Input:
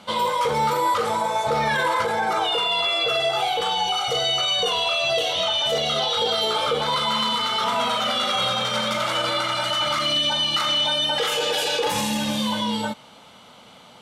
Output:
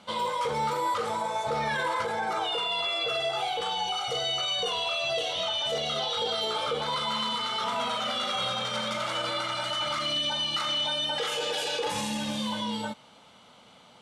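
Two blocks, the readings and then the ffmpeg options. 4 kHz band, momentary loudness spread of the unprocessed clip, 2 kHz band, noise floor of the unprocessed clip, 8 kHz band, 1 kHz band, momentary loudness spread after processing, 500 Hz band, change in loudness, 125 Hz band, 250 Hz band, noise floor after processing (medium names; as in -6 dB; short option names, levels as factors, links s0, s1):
-7.0 dB, 4 LU, -7.0 dB, -48 dBFS, -7.0 dB, -7.0 dB, 4 LU, -7.0 dB, -7.0 dB, -7.0 dB, -7.0 dB, -55 dBFS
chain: -af "lowpass=f=11000:w=0.5412,lowpass=f=11000:w=1.3066,volume=0.447"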